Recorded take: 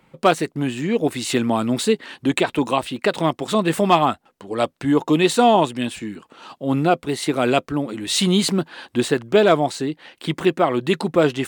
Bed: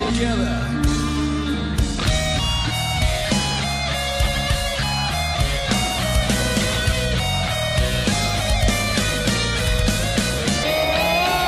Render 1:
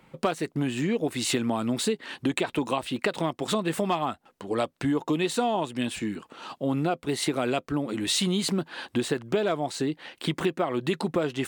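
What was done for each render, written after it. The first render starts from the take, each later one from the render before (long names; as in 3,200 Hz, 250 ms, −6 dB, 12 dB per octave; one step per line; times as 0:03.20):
downward compressor 6 to 1, threshold −23 dBFS, peak gain reduction 13.5 dB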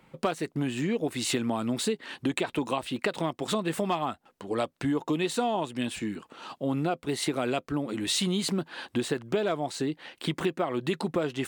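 level −2 dB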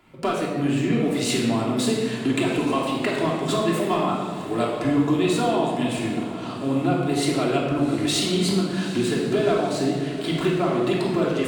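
feedback delay with all-pass diffusion 763 ms, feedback 58%, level −14 dB
rectangular room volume 1,500 cubic metres, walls mixed, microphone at 3.1 metres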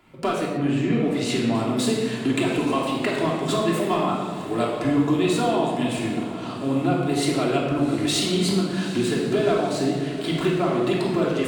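0:00.57–0:01.55: low-pass filter 4,000 Hz 6 dB per octave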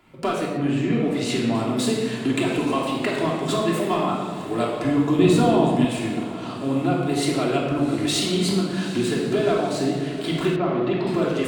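0:05.19–0:05.85: low-shelf EQ 320 Hz +10.5 dB
0:10.56–0:11.07: high-frequency loss of the air 230 metres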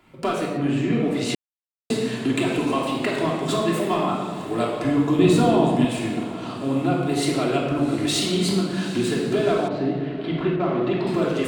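0:01.35–0:01.90: silence
0:09.68–0:10.60: high-frequency loss of the air 350 metres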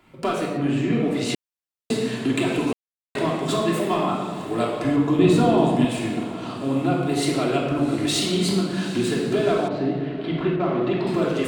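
0:02.73–0:03.15: silence
0:04.96–0:05.58: high-shelf EQ 5,000 Hz −5 dB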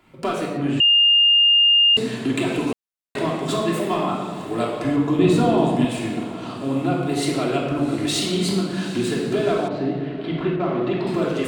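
0:00.80–0:01.97: beep over 2,820 Hz −11.5 dBFS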